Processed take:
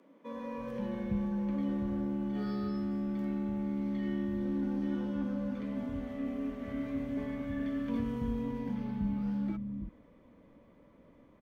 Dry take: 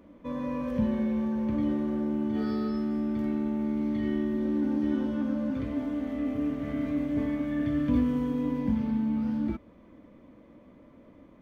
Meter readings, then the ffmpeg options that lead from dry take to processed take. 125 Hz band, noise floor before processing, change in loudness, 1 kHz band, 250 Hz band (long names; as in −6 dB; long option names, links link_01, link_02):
−2.5 dB, −55 dBFS, −6.0 dB, −4.5 dB, −6.0 dB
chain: -filter_complex "[0:a]afreqshift=-17,acrossover=split=220[link_01][link_02];[link_01]adelay=320[link_03];[link_03][link_02]amix=inputs=2:normalize=0,volume=-4.5dB"